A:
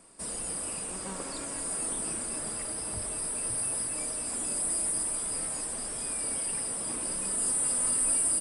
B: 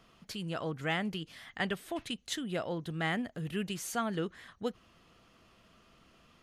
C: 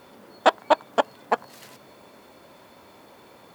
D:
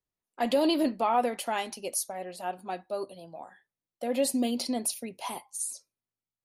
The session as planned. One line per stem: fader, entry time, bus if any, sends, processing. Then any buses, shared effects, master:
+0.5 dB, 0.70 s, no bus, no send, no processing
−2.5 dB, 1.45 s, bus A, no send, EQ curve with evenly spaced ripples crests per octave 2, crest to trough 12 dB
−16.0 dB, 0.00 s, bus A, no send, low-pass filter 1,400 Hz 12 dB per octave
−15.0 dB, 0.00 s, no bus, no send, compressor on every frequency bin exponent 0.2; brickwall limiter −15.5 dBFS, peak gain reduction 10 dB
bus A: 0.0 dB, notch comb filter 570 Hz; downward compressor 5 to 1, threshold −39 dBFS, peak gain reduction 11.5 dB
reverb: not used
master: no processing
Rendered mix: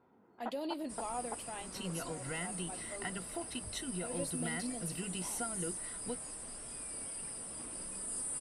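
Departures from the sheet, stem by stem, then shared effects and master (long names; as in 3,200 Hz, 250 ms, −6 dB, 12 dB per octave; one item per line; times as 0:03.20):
stem A +0.5 dB → −11.0 dB
stem D: missing compressor on every frequency bin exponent 0.2
master: extra low-shelf EQ 130 Hz +4.5 dB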